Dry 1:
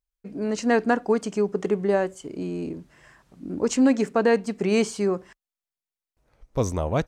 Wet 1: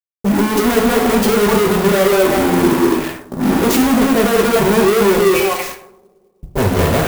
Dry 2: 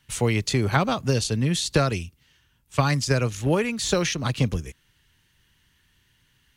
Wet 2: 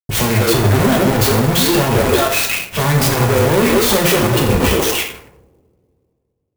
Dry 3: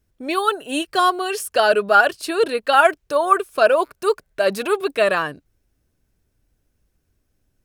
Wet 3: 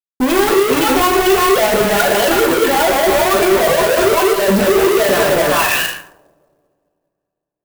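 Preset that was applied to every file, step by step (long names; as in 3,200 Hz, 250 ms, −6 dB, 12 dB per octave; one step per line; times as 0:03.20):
high-pass filter 55 Hz 12 dB per octave
on a send: echo through a band-pass that steps 193 ms, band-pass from 400 Hz, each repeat 1.4 octaves, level −2 dB
on the sum: gate on every frequency bin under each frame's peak −15 dB strong
parametric band 1,300 Hz −11.5 dB 0.41 octaves
in parallel at −2.5 dB: compressor whose output falls as the input rises −26 dBFS, ratio −1
on the sum: fuzz pedal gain 44 dB, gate −44 dBFS
coupled-rooms reverb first 0.7 s, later 2.7 s, from −25 dB, DRR 0.5 dB
low-pass that shuts in the quiet parts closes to 490 Hz, open at −9 dBFS
converter with an unsteady clock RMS 0.039 ms
level −2 dB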